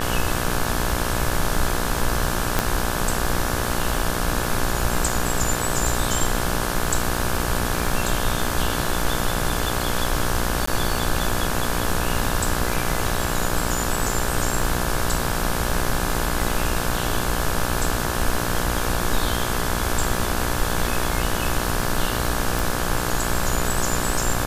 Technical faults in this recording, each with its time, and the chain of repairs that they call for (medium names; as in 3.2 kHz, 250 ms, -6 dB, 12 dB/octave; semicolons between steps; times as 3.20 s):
buzz 60 Hz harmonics 29 -27 dBFS
crackle 46 per s -30 dBFS
2.59 s: pop -3 dBFS
10.66–10.67 s: dropout 14 ms
22.59 s: pop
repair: de-click; de-hum 60 Hz, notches 29; interpolate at 10.66 s, 14 ms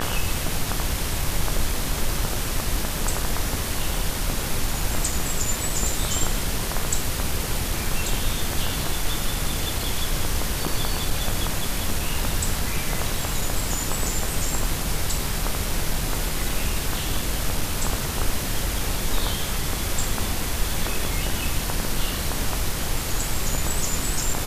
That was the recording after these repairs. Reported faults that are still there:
2.59 s: pop